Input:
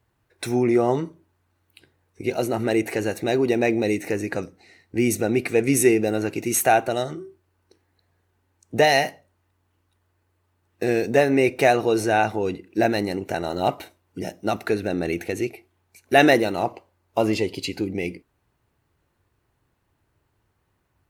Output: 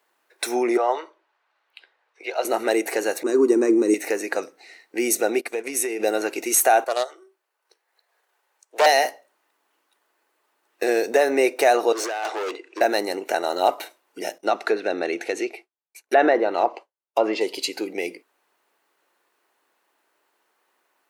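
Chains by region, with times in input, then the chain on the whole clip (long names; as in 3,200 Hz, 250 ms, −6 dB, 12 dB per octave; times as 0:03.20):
0:00.77–0:02.45: high-pass filter 180 Hz + three-way crossover with the lows and the highs turned down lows −23 dB, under 480 Hz, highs −22 dB, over 4,700 Hz
0:03.23–0:03.94: drawn EQ curve 110 Hz 0 dB, 320 Hz +11 dB, 740 Hz −16 dB, 1,100 Hz +4 dB, 2,200 Hz −15 dB, 3,600 Hz −16 dB, 7,700 Hz +6 dB, 14,000 Hz −12 dB + downward expander −16 dBFS
0:05.41–0:06.00: downward compressor, threshold −24 dBFS + noise gate −32 dBFS, range −17 dB
0:06.84–0:08.86: high-pass filter 440 Hz 24 dB per octave + transient designer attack −4 dB, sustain −8 dB + highs frequency-modulated by the lows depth 0.25 ms
0:11.92–0:12.81: Chebyshev band-pass filter 350–7,500 Hz, order 3 + compressor whose output falls as the input rises −24 dBFS, ratio −0.5 + hard clipping −27.5 dBFS
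0:14.38–0:17.41: treble cut that deepens with the level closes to 1,800 Hz, closed at −15.5 dBFS + downward expander −50 dBFS
whole clip: Bessel high-pass filter 540 Hz, order 4; dynamic equaliser 2,500 Hz, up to −7 dB, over −40 dBFS, Q 1.3; boost into a limiter +12.5 dB; level −6 dB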